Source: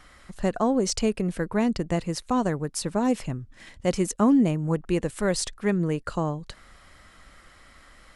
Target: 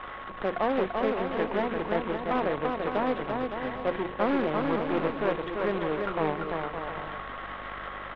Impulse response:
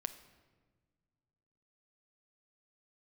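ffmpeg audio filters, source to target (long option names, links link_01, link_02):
-filter_complex "[0:a]aeval=exprs='val(0)+0.5*0.0398*sgn(val(0))':channel_layout=same,equalizer=frequency=2400:width_type=o:width=0.52:gain=-8,bandreject=frequency=60:width_type=h:width=6,bandreject=frequency=120:width_type=h:width=6,bandreject=frequency=180:width_type=h:width=6,bandreject=frequency=240:width_type=h:width=6,bandreject=frequency=300:width_type=h:width=6,bandreject=frequency=360:width_type=h:width=6,aeval=exprs='val(0)+0.0126*(sin(2*PI*50*n/s)+sin(2*PI*2*50*n/s)/2+sin(2*PI*3*50*n/s)/3+sin(2*PI*4*50*n/s)/4+sin(2*PI*5*50*n/s)/5)':channel_layout=same,aresample=8000,acrusher=bits=2:mode=log:mix=0:aa=0.000001,aresample=44100,aeval=exprs='(tanh(8.91*val(0)+0.7)-tanh(0.7))/8.91':channel_layout=same,acrossover=split=310 2600:gain=0.158 1 0.1[link_01][link_02][link_03];[link_01][link_02][link_03]amix=inputs=3:normalize=0,asplit=2[link_04][link_05];[link_05]aecho=0:1:340|561|704.6|798|858.7:0.631|0.398|0.251|0.158|0.1[link_06];[link_04][link_06]amix=inputs=2:normalize=0,aeval=exprs='val(0)+0.00631*sin(2*PI*1100*n/s)':channel_layout=same,volume=1.5dB"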